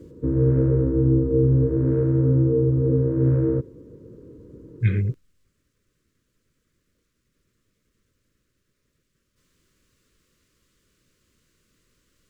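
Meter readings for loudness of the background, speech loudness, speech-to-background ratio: −20.5 LKFS, −25.5 LKFS, −5.0 dB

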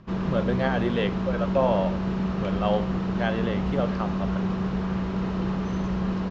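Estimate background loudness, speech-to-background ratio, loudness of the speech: −27.5 LKFS, −1.5 dB, −29.0 LKFS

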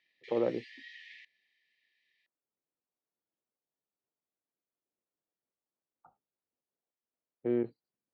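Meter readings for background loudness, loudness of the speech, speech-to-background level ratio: −51.5 LKFS, −34.5 LKFS, 17.0 dB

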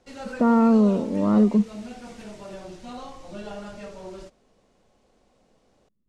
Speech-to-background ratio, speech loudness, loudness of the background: 19.0 dB, −20.0 LKFS, −39.0 LKFS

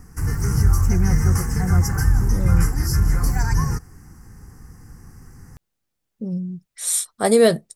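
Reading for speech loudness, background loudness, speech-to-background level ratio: −21.0 LKFS, −20.5 LKFS, −0.5 dB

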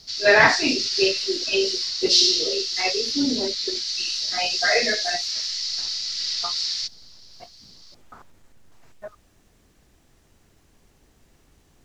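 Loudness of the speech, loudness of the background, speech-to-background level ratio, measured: −23.5 LKFS, −23.0 LKFS, −0.5 dB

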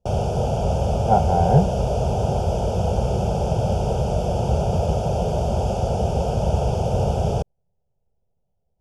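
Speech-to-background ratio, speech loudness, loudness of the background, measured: 2.0 dB, −20.5 LKFS, −22.5 LKFS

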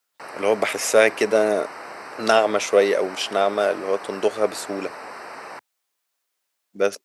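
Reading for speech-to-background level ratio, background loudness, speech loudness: 15.0 dB, −36.5 LKFS, −21.5 LKFS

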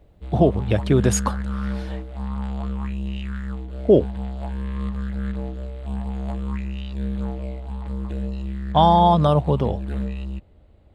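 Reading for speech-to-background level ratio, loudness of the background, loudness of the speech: 10.0 dB, −29.5 LKFS, −19.5 LKFS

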